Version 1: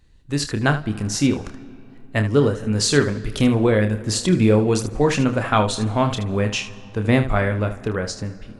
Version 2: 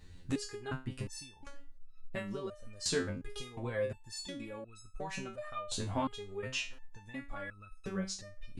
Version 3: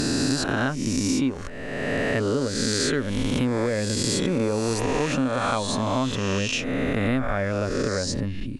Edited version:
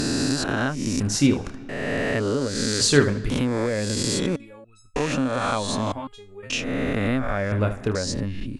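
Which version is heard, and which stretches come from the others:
3
1.00–1.69 s: from 1
2.81–3.30 s: from 1
4.36–4.96 s: from 2
5.92–6.50 s: from 2
7.52–7.95 s: from 1

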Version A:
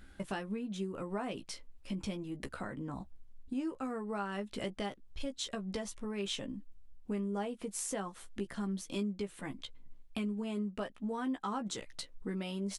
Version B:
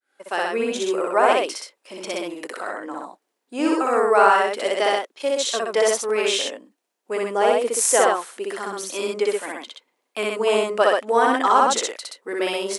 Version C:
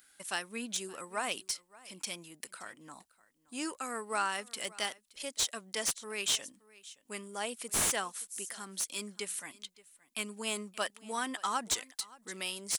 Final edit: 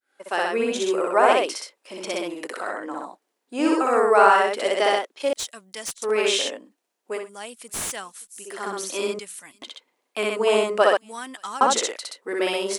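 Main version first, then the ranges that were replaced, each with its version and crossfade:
B
5.33–6.02 s: from C
7.18–8.54 s: from C, crossfade 0.24 s
9.19–9.62 s: from C
10.97–11.61 s: from C
not used: A

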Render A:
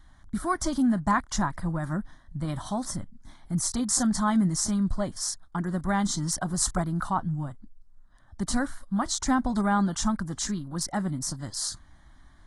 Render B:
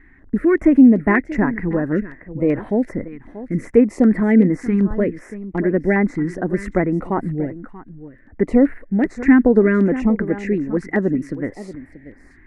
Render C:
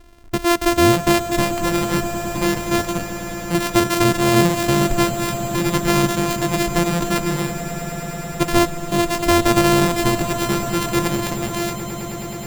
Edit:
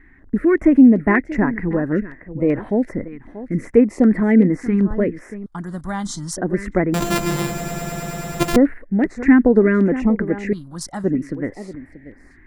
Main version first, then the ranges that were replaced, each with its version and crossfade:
B
5.46–6.37 s: from A
6.94–8.56 s: from C
10.53–11.04 s: from A

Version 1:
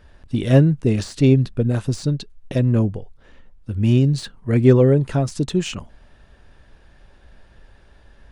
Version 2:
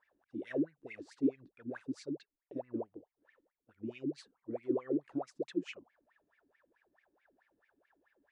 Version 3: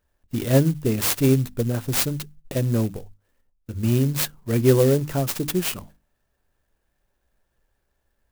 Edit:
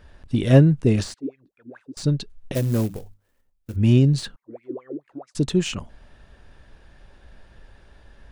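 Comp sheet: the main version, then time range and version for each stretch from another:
1
1.14–1.97 s: from 2
2.55–3.76 s: from 3
4.36–5.35 s: from 2

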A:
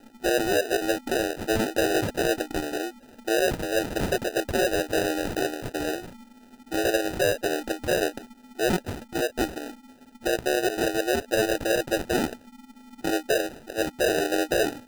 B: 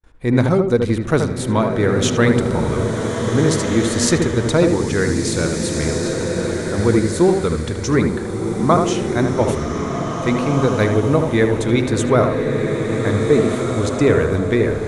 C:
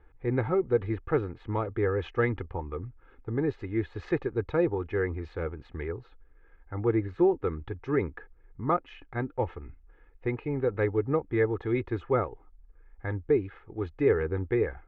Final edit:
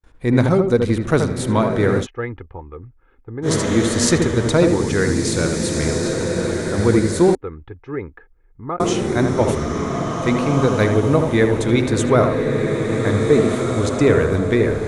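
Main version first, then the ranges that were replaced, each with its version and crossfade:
B
2.02–3.47 s: from C, crossfade 0.10 s
7.35–8.80 s: from C
not used: A

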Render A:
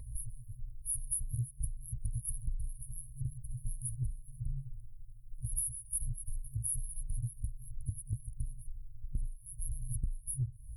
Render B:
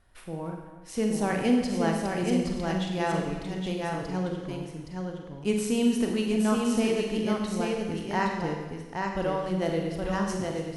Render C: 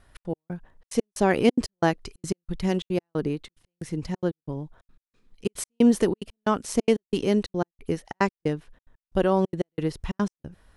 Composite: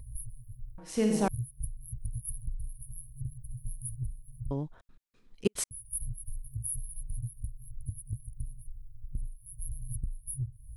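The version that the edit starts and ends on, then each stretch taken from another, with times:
A
0.78–1.28 s: from B
4.51–5.71 s: from C

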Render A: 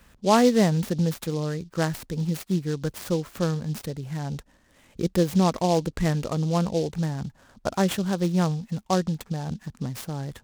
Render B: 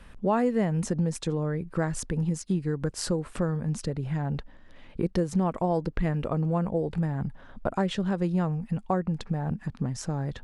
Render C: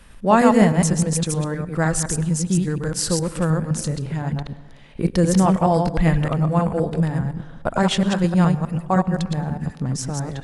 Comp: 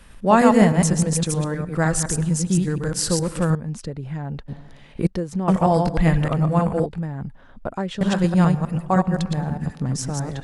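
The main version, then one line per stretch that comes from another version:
C
3.55–4.48 s: from B
5.07–5.48 s: from B
6.86–8.01 s: from B
not used: A

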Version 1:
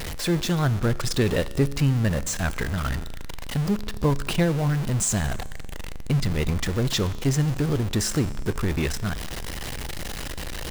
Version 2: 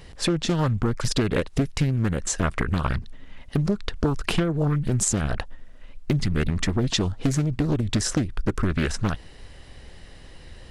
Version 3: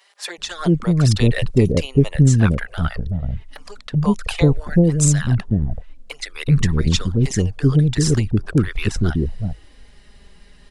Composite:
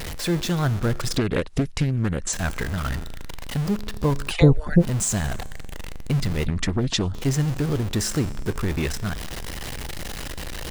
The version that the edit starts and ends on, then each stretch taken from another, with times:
1
1.17–2.33 s: from 2
4.30–4.81 s: from 3, crossfade 0.06 s
6.46–7.14 s: from 2

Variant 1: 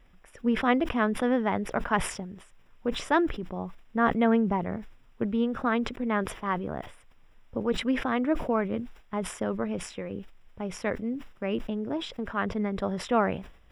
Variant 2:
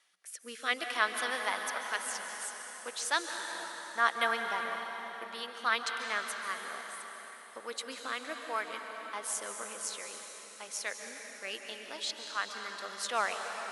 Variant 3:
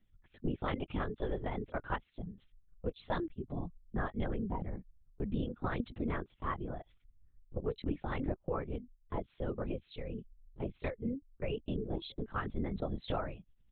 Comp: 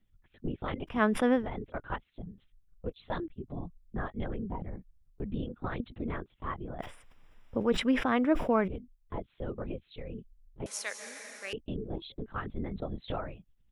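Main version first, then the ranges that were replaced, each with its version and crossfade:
3
0.95–1.41 s: from 1, crossfade 0.16 s
6.79–8.68 s: from 1
10.66–11.53 s: from 2

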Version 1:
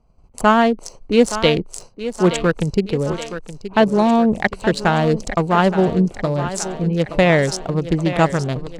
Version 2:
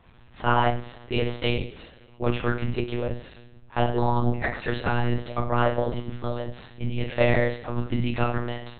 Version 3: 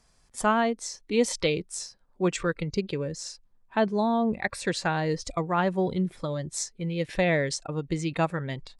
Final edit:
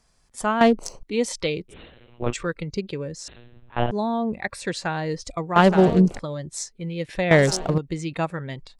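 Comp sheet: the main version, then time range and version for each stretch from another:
3
0.61–1.03 s: from 1
1.71–2.31 s: from 2, crossfade 0.06 s
3.28–3.91 s: from 2
5.56–6.19 s: from 1
7.31–7.78 s: from 1

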